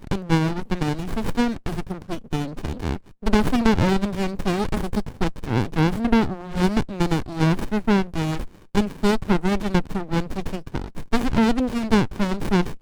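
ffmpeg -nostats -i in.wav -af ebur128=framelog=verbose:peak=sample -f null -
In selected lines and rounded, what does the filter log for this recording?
Integrated loudness:
  I:         -23.6 LUFS
  Threshold: -33.6 LUFS
Loudness range:
  LRA:         2.5 LU
  Threshold: -43.6 LUFS
  LRA low:   -25.0 LUFS
  LRA high:  -22.6 LUFS
Sample peak:
  Peak:       -5.5 dBFS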